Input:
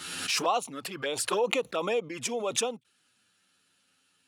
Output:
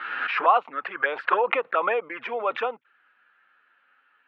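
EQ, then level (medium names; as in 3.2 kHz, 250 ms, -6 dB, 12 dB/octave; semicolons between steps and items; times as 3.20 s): band-pass 500–2200 Hz; distance through air 380 m; peaking EQ 1.6 kHz +14 dB 1.5 oct; +4.5 dB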